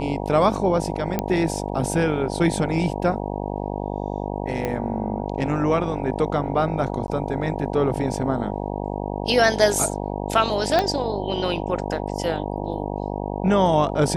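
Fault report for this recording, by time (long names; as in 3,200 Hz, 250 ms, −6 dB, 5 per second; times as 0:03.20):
mains buzz 50 Hz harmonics 19 −28 dBFS
0:01.19: click −8 dBFS
0:04.65: click −12 dBFS
0:07.07–0:07.08: drop-out 11 ms
0:10.79: click −7 dBFS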